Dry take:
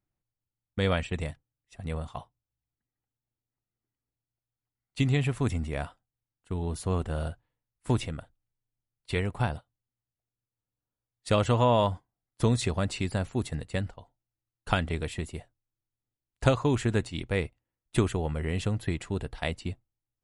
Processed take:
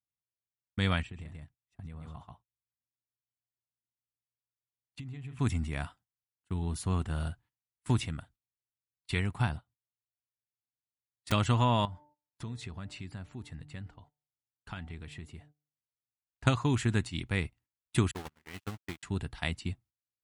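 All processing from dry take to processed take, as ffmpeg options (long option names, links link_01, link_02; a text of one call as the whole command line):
ffmpeg -i in.wav -filter_complex "[0:a]asettb=1/sr,asplit=3[link_01][link_02][link_03];[link_01]atrim=end=1.024[link_04];[link_02]atrim=start=1.02:end=5.39,asetpts=PTS-STARTPTS,afade=type=in:duration=0.004:curve=qsin,afade=type=out:start_time=4.366:duration=0.004:curve=qsin,highshelf=frequency=2000:gain=-10,aecho=1:1:133:0.422,atrim=end_sample=192717,acompressor=threshold=-38dB:ratio=8:attack=3.2:release=140:knee=1:detection=peak[link_05];[link_03]atrim=start=5.386[link_06];[link_04][link_05]acrossfade=duration=0.004:curve1=hsin:curve2=qsin[link_07];[link_07][link_06]acrossfade=duration=0.004:curve1=qsin:curve2=hsin,asettb=1/sr,asplit=3[link_08][link_09][link_10];[link_08]atrim=end=9.554[link_11];[link_09]atrim=start=9.55:end=11.32,asetpts=PTS-STARTPTS,afade=type=in:duration=0.004:curve=qsin,afade=type=out:start_time=1.766:duration=0.004:curve=qsin,highshelf=frequency=2400:gain=-8.5,aeval=exprs='(mod(23.7*val(0)+1,2)-1)/23.7':channel_layout=same[link_12];[link_10]atrim=start=11.316[link_13];[link_11][link_12]acrossfade=duration=0.004:curve1=hsin:curve2=qsin[link_14];[link_14][link_13]acrossfade=duration=0.004:curve1=qsin:curve2=hsin,asettb=1/sr,asplit=3[link_15][link_16][link_17];[link_15]atrim=end=11.854[link_18];[link_16]atrim=start=11.85:end=16.47,asetpts=PTS-STARTPTS,afade=type=in:duration=0.004:curve=qsin,afade=type=out:start_time=4.616:duration=0.004:curve=qsin,lowpass=frequency=3100:poles=1,bandreject=frequency=148.5:width_type=h:width=4,bandreject=frequency=297:width_type=h:width=4,bandreject=frequency=445.5:width_type=h:width=4,bandreject=frequency=594:width_type=h:width=4,bandreject=frequency=742.5:width_type=h:width=4,bandreject=frequency=891:width_type=h:width=4,acompressor=threshold=-45dB:ratio=2:attack=3.2:release=140:knee=1:detection=peak[link_19];[link_17]atrim=start=16.466[link_20];[link_18][link_19]acrossfade=duration=0.004:curve1=hsin:curve2=qsin[link_21];[link_21][link_20]acrossfade=duration=0.004:curve1=qsin:curve2=hsin,asettb=1/sr,asplit=3[link_22][link_23][link_24];[link_22]atrim=end=18.114[link_25];[link_23]atrim=start=18.11:end=19.03,asetpts=PTS-STARTPTS,afade=type=in:duration=0.004:curve=qsin,afade=type=out:start_time=0.916:duration=0.004:curve=qsin,aeval=exprs='val(0)*gte(abs(val(0)),0.0251)':channel_layout=same,bass=frequency=250:gain=-7,treble=frequency=4000:gain=-2,agate=range=-43dB:threshold=-32dB:ratio=16:release=100:detection=peak[link_26];[link_24]atrim=start=19.026[link_27];[link_25][link_26]acrossfade=duration=0.004:curve1=hsin:curve2=qsin[link_28];[link_28][link_27]acrossfade=duration=0.004:curve1=qsin:curve2=hsin,highpass=56,agate=range=-15dB:threshold=-56dB:ratio=16:detection=peak,equalizer=frequency=520:width_type=o:width=0.91:gain=-12.5" out.wav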